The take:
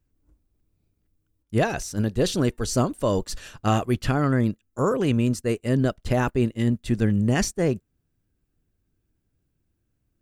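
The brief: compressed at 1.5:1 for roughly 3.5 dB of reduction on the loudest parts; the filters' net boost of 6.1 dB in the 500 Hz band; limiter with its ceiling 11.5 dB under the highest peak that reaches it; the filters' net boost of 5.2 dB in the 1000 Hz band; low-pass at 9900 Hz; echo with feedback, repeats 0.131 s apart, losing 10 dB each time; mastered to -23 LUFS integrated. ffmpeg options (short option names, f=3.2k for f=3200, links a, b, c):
-af "lowpass=9.9k,equalizer=f=500:t=o:g=6.5,equalizer=f=1k:t=o:g=4.5,acompressor=threshold=-22dB:ratio=1.5,alimiter=limit=-20dB:level=0:latency=1,aecho=1:1:131|262|393|524:0.316|0.101|0.0324|0.0104,volume=7dB"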